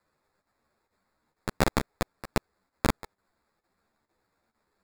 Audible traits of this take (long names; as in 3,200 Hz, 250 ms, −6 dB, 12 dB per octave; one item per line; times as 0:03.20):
chopped level 2.2 Hz, depth 65%, duty 90%
aliases and images of a low sample rate 3,000 Hz, jitter 0%
a shimmering, thickened sound